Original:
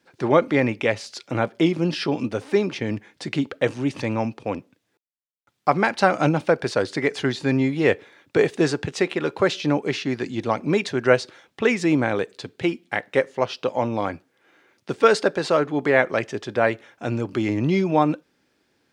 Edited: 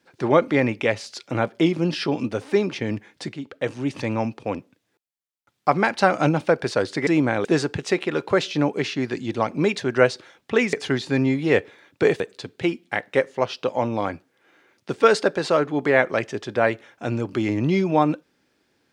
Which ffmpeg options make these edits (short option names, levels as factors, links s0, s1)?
-filter_complex "[0:a]asplit=6[s0][s1][s2][s3][s4][s5];[s0]atrim=end=3.33,asetpts=PTS-STARTPTS,afade=t=out:st=3.326:d=0.004:c=hsin:silence=0.223872[s6];[s1]atrim=start=3.33:end=7.072,asetpts=PTS-STARTPTS,afade=t=in:d=0.94:c=qsin:silence=0.223872[s7];[s2]atrim=start=11.818:end=12.202[s8];[s3]atrim=start=8.538:end=11.822[s9];[s4]atrim=start=7.068:end=8.542[s10];[s5]atrim=start=12.198[s11];[s6][s7]concat=n=2:v=0:a=1[s12];[s12][s8]acrossfade=d=0.004:c1=hsin:c2=hsin[s13];[s13][s9]acrossfade=d=0.004:c1=hsin:c2=hsin[s14];[s14][s10]acrossfade=d=0.004:c1=hsin:c2=hsin[s15];[s15][s11]acrossfade=d=0.004:c1=hsin:c2=hsin"